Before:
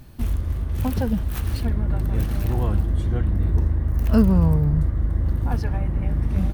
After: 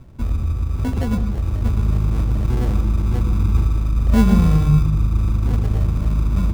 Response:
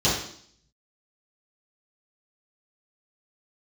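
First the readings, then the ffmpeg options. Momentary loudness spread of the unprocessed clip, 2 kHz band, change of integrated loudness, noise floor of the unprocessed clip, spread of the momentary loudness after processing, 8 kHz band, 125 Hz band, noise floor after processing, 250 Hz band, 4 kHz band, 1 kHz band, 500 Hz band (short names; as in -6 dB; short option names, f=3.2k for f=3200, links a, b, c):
8 LU, +3.0 dB, +3.5 dB, -28 dBFS, 8 LU, n/a, +3.5 dB, -24 dBFS, +2.5 dB, +3.5 dB, +3.0 dB, -0.5 dB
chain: -filter_complex "[0:a]acrusher=samples=36:mix=1:aa=0.000001,tiltshelf=f=800:g=4.5,asplit=2[a][b];[1:a]atrim=start_sample=2205,adelay=89[c];[b][c]afir=irnorm=-1:irlink=0,volume=-26dB[d];[a][d]amix=inputs=2:normalize=0,volume=-2.5dB"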